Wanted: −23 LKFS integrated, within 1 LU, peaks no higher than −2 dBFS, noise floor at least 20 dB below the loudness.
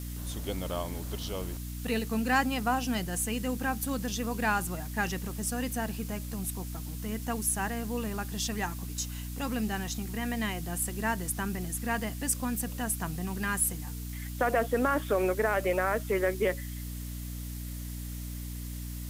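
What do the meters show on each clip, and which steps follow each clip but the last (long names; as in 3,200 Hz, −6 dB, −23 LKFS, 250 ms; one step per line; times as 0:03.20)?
mains hum 60 Hz; hum harmonics up to 300 Hz; level of the hum −36 dBFS; background noise floor −38 dBFS; target noise floor −52 dBFS; integrated loudness −32.0 LKFS; sample peak −13.0 dBFS; target loudness −23.0 LKFS
→ mains-hum notches 60/120/180/240/300 Hz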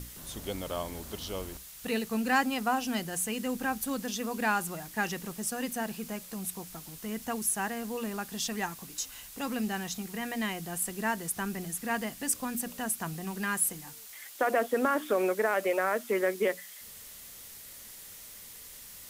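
mains hum none found; background noise floor −48 dBFS; target noise floor −52 dBFS
→ noise reduction from a noise print 6 dB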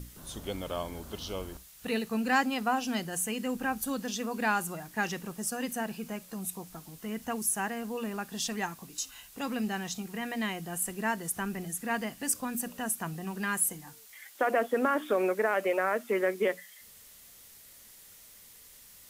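background noise floor −54 dBFS; integrated loudness −32.0 LKFS; sample peak −13.5 dBFS; target loudness −23.0 LKFS
→ level +9 dB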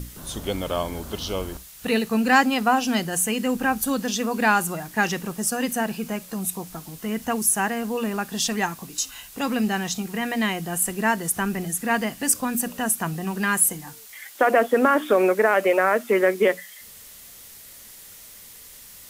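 integrated loudness −23.0 LKFS; sample peak −4.5 dBFS; background noise floor −45 dBFS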